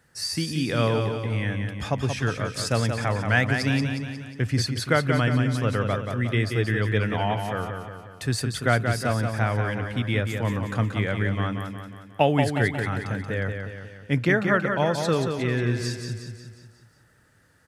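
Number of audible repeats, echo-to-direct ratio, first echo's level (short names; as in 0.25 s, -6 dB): 6, -4.5 dB, -6.0 dB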